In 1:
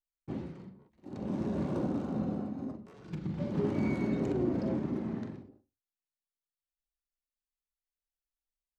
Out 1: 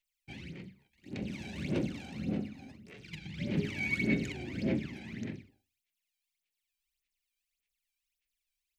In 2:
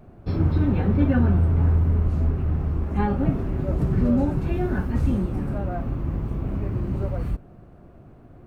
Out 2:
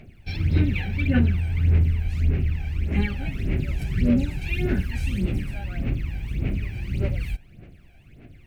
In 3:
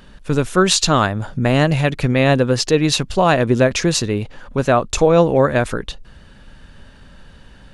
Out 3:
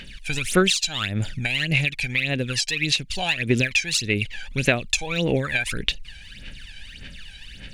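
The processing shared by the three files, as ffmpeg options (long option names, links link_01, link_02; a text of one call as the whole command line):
ffmpeg -i in.wav -af "highshelf=frequency=1600:width_type=q:width=3:gain=13,acompressor=threshold=-15dB:ratio=6,aphaser=in_gain=1:out_gain=1:delay=1.3:decay=0.74:speed=1.7:type=sinusoidal,volume=-9dB" out.wav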